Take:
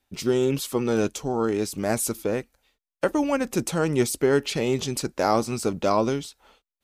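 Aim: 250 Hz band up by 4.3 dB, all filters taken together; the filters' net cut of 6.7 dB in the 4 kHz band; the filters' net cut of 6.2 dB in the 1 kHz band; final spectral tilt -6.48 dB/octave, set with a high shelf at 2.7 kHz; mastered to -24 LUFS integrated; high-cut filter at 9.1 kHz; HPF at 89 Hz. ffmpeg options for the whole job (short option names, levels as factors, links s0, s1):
-af "highpass=89,lowpass=9100,equalizer=f=250:t=o:g=6,equalizer=f=1000:t=o:g=-8.5,highshelf=f=2700:g=-3,equalizer=f=4000:t=o:g=-5.5,volume=0.944"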